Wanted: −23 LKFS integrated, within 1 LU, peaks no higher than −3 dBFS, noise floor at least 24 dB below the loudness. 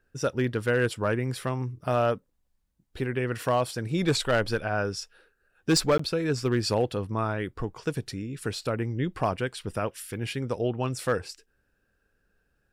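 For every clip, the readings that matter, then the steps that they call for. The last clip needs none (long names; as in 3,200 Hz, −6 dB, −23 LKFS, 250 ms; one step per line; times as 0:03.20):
share of clipped samples 0.3%; peaks flattened at −16.0 dBFS; number of dropouts 1; longest dropout 14 ms; integrated loudness −28.5 LKFS; sample peak −16.0 dBFS; target loudness −23.0 LKFS
→ clipped peaks rebuilt −16 dBFS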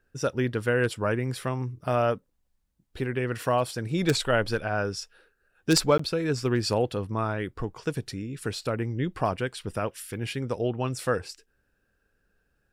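share of clipped samples 0.0%; number of dropouts 1; longest dropout 14 ms
→ repair the gap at 0:05.98, 14 ms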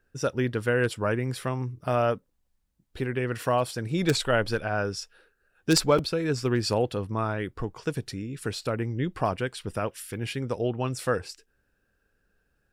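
number of dropouts 0; integrated loudness −28.0 LKFS; sample peak −7.0 dBFS; target loudness −23.0 LKFS
→ level +5 dB
brickwall limiter −3 dBFS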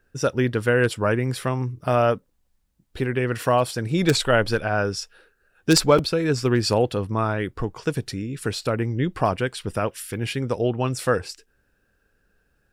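integrated loudness −23.0 LKFS; sample peak −3.0 dBFS; background noise floor −69 dBFS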